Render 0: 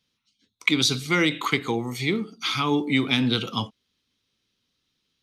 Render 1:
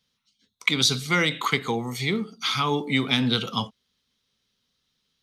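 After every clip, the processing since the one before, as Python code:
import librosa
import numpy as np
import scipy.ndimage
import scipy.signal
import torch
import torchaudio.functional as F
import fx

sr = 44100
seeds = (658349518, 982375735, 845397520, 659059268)

y = fx.graphic_eq_31(x, sr, hz=(100, 315, 2500), db=(-6, -11, -4))
y = F.gain(torch.from_numpy(y), 1.5).numpy()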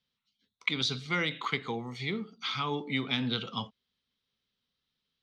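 y = scipy.signal.sosfilt(scipy.signal.cheby1(2, 1.0, 3700.0, 'lowpass', fs=sr, output='sos'), x)
y = F.gain(torch.from_numpy(y), -7.5).numpy()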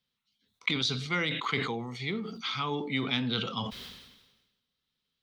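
y = fx.sustainer(x, sr, db_per_s=50.0)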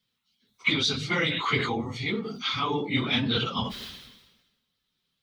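y = fx.phase_scramble(x, sr, seeds[0], window_ms=50)
y = F.gain(torch.from_numpy(y), 4.5).numpy()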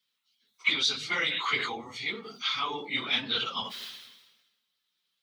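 y = fx.highpass(x, sr, hz=1100.0, slope=6)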